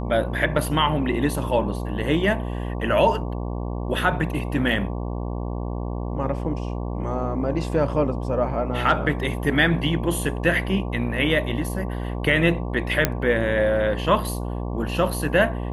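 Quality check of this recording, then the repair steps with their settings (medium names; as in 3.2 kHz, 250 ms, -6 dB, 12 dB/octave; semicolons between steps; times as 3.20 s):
buzz 60 Hz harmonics 19 -28 dBFS
13.05 s: pop -2 dBFS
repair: de-click; de-hum 60 Hz, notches 19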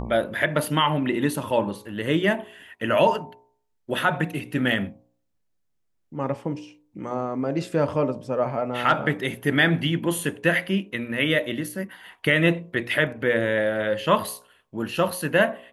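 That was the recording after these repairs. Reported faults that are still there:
nothing left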